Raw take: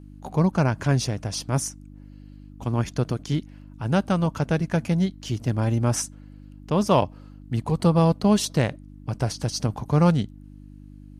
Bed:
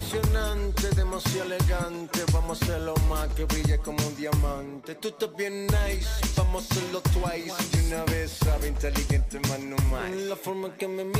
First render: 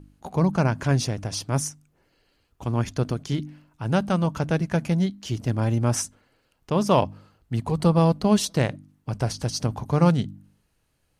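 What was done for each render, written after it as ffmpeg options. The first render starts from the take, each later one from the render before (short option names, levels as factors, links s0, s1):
-af "bandreject=f=50:t=h:w=4,bandreject=f=100:t=h:w=4,bandreject=f=150:t=h:w=4,bandreject=f=200:t=h:w=4,bandreject=f=250:t=h:w=4,bandreject=f=300:t=h:w=4"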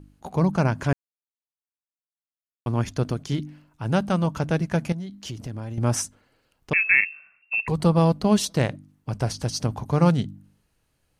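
-filter_complex "[0:a]asettb=1/sr,asplit=3[s0][s1][s2];[s0]atrim=end=4.924[s3];[s1]atrim=start=4.92:end=5.78,asetpts=PTS-STARTPTS,afade=t=in:d=0.004:c=qsin,afade=t=out:st=0.856:d=0.004:c=qsin,acompressor=threshold=0.0355:ratio=16:attack=3.2:release=140:knee=1:detection=peak[s4];[s2]atrim=start=5.776[s5];[s3][s4]acrossfade=d=0.004:c1=hsin:c2=qsin[s6];[s6][s5]acrossfade=d=0.004:c1=qsin:c2=hsin,asettb=1/sr,asplit=3[s7][s8][s9];[s7]atrim=end=6.734[s10];[s8]atrim=start=6.73:end=7.68,asetpts=PTS-STARTPTS,afade=t=in:d=0.004:c=qsin,afade=t=out:st=0.946:d=0.004:c=qsin,lowpass=f=2400:t=q:w=0.5098,lowpass=f=2400:t=q:w=0.6013,lowpass=f=2400:t=q:w=0.9,lowpass=f=2400:t=q:w=2.563,afreqshift=-2800[s11];[s9]atrim=start=7.676[s12];[s10][s11]acrossfade=d=0.004:c1=hsin:c2=qsin[s13];[s13][s12]acrossfade=d=0.004:c1=qsin:c2=hsin,asplit=3[s14][s15][s16];[s14]atrim=end=0.93,asetpts=PTS-STARTPTS,afade=t=out:st=0.926:d=0.004:c=hsin[s17];[s15]atrim=start=0.93:end=2.66,asetpts=PTS-STARTPTS,volume=0[s18];[s16]atrim=start=2.66,asetpts=PTS-STARTPTS,afade=t=in:d=0.004:c=hsin[s19];[s17][s18][s19]concat=n=3:v=0:a=1"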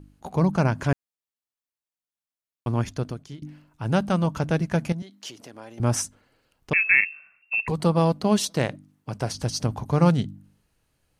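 -filter_complex "[0:a]asettb=1/sr,asplit=3[s0][s1][s2];[s0]atrim=end=5.024[s3];[s1]atrim=start=5.02:end=5.8,asetpts=PTS-STARTPTS,afade=t=in:d=0.004:c=qsin,afade=t=out:st=0.776:d=0.004:c=qsin,highpass=400[s4];[s2]atrim=start=5.796[s5];[s3][s4]acrossfade=d=0.004:c1=hsin:c2=qsin[s6];[s6][s5]acrossfade=d=0.004:c1=qsin:c2=hsin,asettb=1/sr,asplit=3[s7][s8][s9];[s7]atrim=end=7.714[s10];[s8]atrim=start=7.71:end=9.35,asetpts=PTS-STARTPTS,afade=t=in:d=0.004:c=qsin,afade=t=out:st=1.636:d=0.004:c=qsin,highpass=f=160:p=1[s11];[s9]atrim=start=9.346[s12];[s10][s11]acrossfade=d=0.004:c1=hsin:c2=qsin[s13];[s13][s12]acrossfade=d=0.004:c1=qsin:c2=hsin,asplit=2[s14][s15];[s14]atrim=end=3.42,asetpts=PTS-STARTPTS,afade=t=out:st=2.75:d=0.67:silence=0.0944061[s16];[s15]atrim=start=3.42,asetpts=PTS-STARTPTS,afade=t=in:d=0.004:c=hsin:silence=0.0944061[s17];[s16][s17]concat=n=2:v=0:a=1"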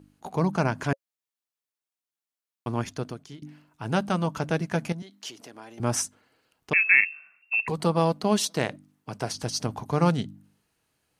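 -af "highpass=f=230:p=1,bandreject=f=550:w=12"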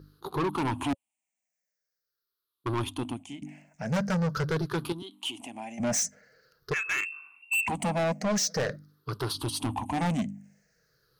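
-af "afftfilt=real='re*pow(10,20/40*sin(2*PI*(0.59*log(max(b,1)*sr/1024/100)/log(2)-(-0.45)*(pts-256)/sr)))':imag='im*pow(10,20/40*sin(2*PI*(0.59*log(max(b,1)*sr/1024/100)/log(2)-(-0.45)*(pts-256)/sr)))':win_size=1024:overlap=0.75,asoftclip=type=tanh:threshold=0.0631"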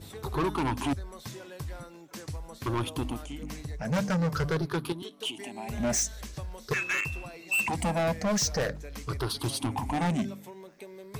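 -filter_complex "[1:a]volume=0.188[s0];[0:a][s0]amix=inputs=2:normalize=0"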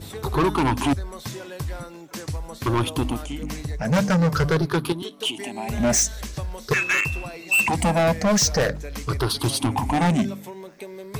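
-af "volume=2.51"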